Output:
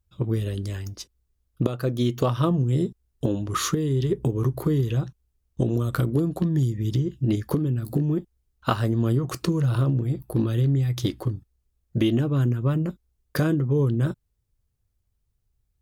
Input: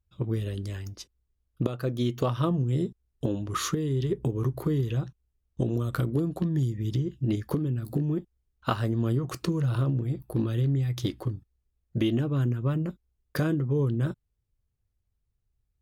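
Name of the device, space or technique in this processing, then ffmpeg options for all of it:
exciter from parts: -filter_complex "[0:a]asplit=2[s0][s1];[s1]highpass=2200,asoftclip=type=tanh:threshold=0.0119,highpass=f=3700:p=1,volume=0.398[s2];[s0][s2]amix=inputs=2:normalize=0,volume=1.58"

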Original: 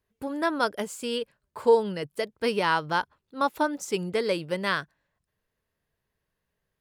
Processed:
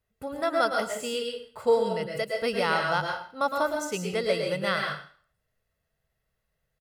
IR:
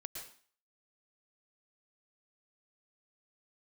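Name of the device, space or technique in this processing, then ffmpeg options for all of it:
microphone above a desk: -filter_complex "[0:a]aecho=1:1:1.5:0.51[s0];[1:a]atrim=start_sample=2205[s1];[s0][s1]afir=irnorm=-1:irlink=0,volume=1.41"

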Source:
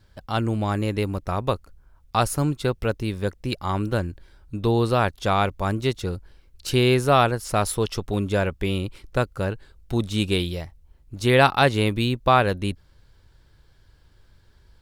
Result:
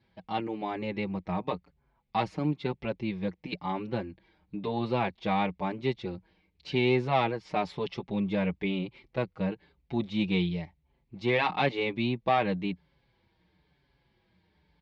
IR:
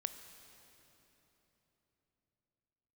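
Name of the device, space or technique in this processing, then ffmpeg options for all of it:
barber-pole flanger into a guitar amplifier: -filter_complex "[0:a]asplit=2[s0][s1];[s1]adelay=5.6,afreqshift=-0.99[s2];[s0][s2]amix=inputs=2:normalize=1,asoftclip=type=tanh:threshold=0.211,highpass=95,equalizer=f=100:t=q:w=4:g=-10,equalizer=f=180:t=q:w=4:g=10,equalizer=f=330:t=q:w=4:g=3,equalizer=f=840:t=q:w=4:g=6,equalizer=f=1400:t=q:w=4:g=-8,equalizer=f=2200:t=q:w=4:g=8,lowpass=f=4200:w=0.5412,lowpass=f=4200:w=1.3066,volume=0.596"

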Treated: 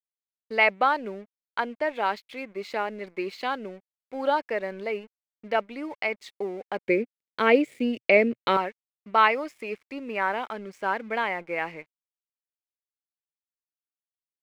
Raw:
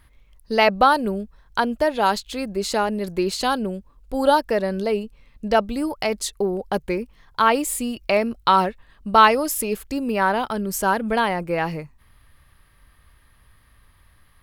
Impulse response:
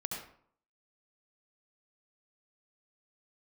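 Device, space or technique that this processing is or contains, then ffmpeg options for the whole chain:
pocket radio on a weak battery: -filter_complex "[0:a]highpass=290,lowpass=3100,aeval=exprs='sgn(val(0))*max(abs(val(0))-0.00447,0)':c=same,equalizer=f=2200:t=o:w=0.45:g=11.5,asettb=1/sr,asplit=3[s0][s1][s2];[s0]atrim=end=6.854[s3];[s1]atrim=start=6.85:end=8.57,asetpts=PTS-STARTPTS,afade=t=in:d=0.004:c=qsin,afade=t=out:st=1.716:d=0.004:c=qsin,equalizer=f=125:t=o:w=1:g=11,equalizer=f=250:t=o:w=1:g=9,equalizer=f=500:t=o:w=1:g=11,equalizer=f=1000:t=o:w=1:g=-8,equalizer=f=2000:t=o:w=1:g=4,equalizer=f=4000:t=o:w=1:g=3,equalizer=f=16000:t=o:w=1:g=4[s4];[s2]atrim=start=8.566[s5];[s3][s4]acrossfade=d=0.004:c1=hsin:c2=qsin[s6];[s6][s5]acrossfade=d=0.004:c1=qsin:c2=hsin,volume=0.447"

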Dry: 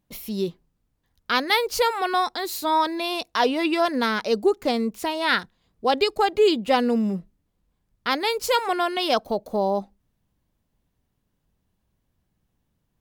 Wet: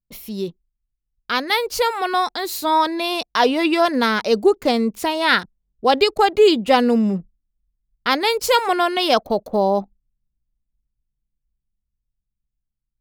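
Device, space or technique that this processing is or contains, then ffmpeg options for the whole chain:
voice memo with heavy noise removal: -af "anlmdn=0.0251,dynaudnorm=f=380:g=11:m=2.51"

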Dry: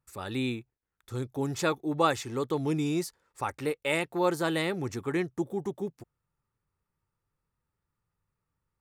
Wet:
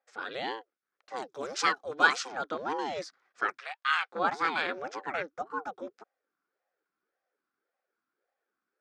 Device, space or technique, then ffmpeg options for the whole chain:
voice changer toy: -filter_complex "[0:a]aeval=exprs='val(0)*sin(2*PI*410*n/s+410*0.65/1.8*sin(2*PI*1.8*n/s))':c=same,highpass=600,equalizer=f=640:t=q:w=4:g=-9,equalizer=f=950:t=q:w=4:g=-9,equalizer=f=1400:t=q:w=4:g=5,equalizer=f=2000:t=q:w=4:g=-4,equalizer=f=2900:t=q:w=4:g=-8,equalizer=f=4100:t=q:w=4:g=-6,lowpass=f=4800:w=0.5412,lowpass=f=4800:w=1.3066,asettb=1/sr,asplit=3[s0][s1][s2];[s0]atrim=end=1.164[s3];[s1]atrim=start=1.16:end=2.32,asetpts=PTS-STARTPTS,afade=t=in:d=0.004:c=qsin,afade=t=out:st=1.156:d=0.004:c=qsin,aemphasis=mode=production:type=75fm[s4];[s2]atrim=start=2.316[s5];[s3][s4]acrossfade=d=0.004:c1=hsin:c2=qsin[s6];[s6][s5]acrossfade=d=0.004:c1=qsin:c2=hsin,asplit=3[s7][s8][s9];[s7]afade=t=out:st=3.57:d=0.02[s10];[s8]highpass=f=830:w=0.5412,highpass=f=830:w=1.3066,afade=t=in:st=3.57:d=0.02,afade=t=out:st=4.11:d=0.02[s11];[s9]afade=t=in:st=4.11:d=0.02[s12];[s10][s11][s12]amix=inputs=3:normalize=0,volume=2.37"

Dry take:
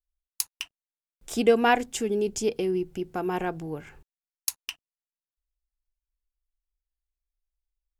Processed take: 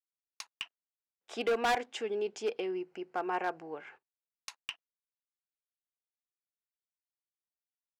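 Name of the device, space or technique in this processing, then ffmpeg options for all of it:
walkie-talkie: -filter_complex "[0:a]asettb=1/sr,asplit=3[s0][s1][s2];[s0]atrim=end=2.734[s3];[s1]atrim=start=2.73:end=3.72,asetpts=PTS-STARTPTS,afade=t=in:d=0.004:c=qsin,afade=t=out:st=0.986:d=0.004:c=qsin,equalizer=f=3500:t=o:w=0.21:g=-14.5[s4];[s2]atrim=start=3.716[s5];[s3][s4]acrossfade=d=0.004:c1=hsin:c2=qsin[s6];[s6][s5]acrossfade=d=0.004:c1=qsin:c2=hsin,highpass=580,lowpass=2900,asoftclip=type=hard:threshold=0.0562,agate=range=0.112:threshold=0.00178:ratio=16:detection=peak"

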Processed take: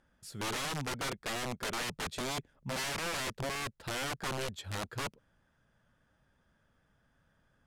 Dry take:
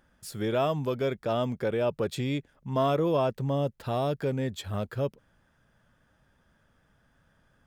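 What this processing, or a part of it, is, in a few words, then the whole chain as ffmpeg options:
overflowing digital effects unit: -filter_complex "[0:a]asettb=1/sr,asplit=3[s0][s1][s2];[s0]atrim=end=1.834[s3];[s1]atrim=start=1.83:end=2.84,asetpts=PTS-STARTPTS,afade=t=in:d=0.004:c=qsin,afade=t=out:st=1.006:d=0.004:c=qsin,lowshelf=f=410:g=3.5[s4];[s2]atrim=start=2.836[s5];[s3][s4]acrossfade=d=0.004:c1=hsin:c2=qsin[s6];[s6][s5]acrossfade=d=0.004:c1=qsin:c2=hsin,aeval=exprs='(mod(18.8*val(0)+1,2)-1)/18.8':c=same,lowpass=11000,volume=0.531"

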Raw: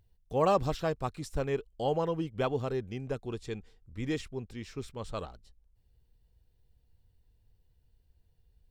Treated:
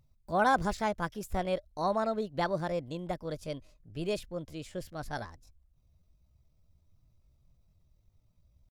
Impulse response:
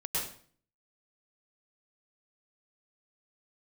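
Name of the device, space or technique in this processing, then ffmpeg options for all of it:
chipmunk voice: -af "asetrate=58866,aresample=44100,atempo=0.749154"

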